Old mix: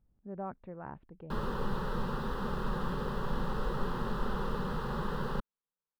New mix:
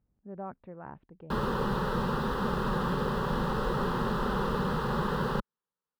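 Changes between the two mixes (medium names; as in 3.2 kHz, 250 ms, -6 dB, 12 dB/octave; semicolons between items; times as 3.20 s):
background +6.5 dB; master: add high-pass 67 Hz 6 dB/octave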